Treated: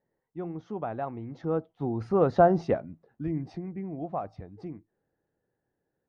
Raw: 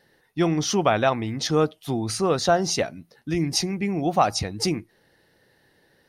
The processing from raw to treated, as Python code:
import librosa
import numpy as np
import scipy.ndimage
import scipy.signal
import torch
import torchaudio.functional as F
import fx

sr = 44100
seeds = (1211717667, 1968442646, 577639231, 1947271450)

y = fx.doppler_pass(x, sr, speed_mps=14, closest_m=5.0, pass_at_s=2.45)
y = scipy.signal.sosfilt(scipy.signal.butter(2, 1000.0, 'lowpass', fs=sr, output='sos'), y)
y = y * 10.0 ** (1.5 / 20.0)